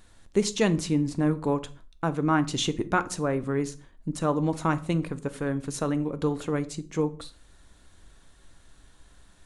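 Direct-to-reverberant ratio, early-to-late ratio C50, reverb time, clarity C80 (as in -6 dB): 11.5 dB, 18.5 dB, no single decay rate, 23.0 dB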